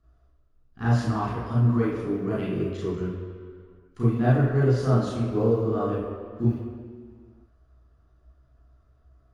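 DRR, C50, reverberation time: -9.0 dB, -0.5 dB, 2.2 s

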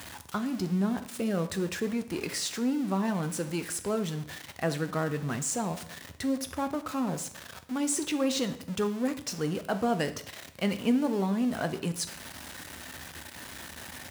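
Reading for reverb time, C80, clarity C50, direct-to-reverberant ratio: 0.65 s, 16.5 dB, 13.0 dB, 9.0 dB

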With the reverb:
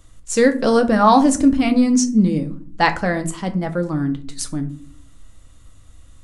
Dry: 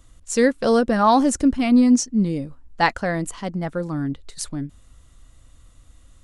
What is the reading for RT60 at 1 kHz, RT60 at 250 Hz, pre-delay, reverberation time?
0.40 s, 0.85 s, 6 ms, 0.50 s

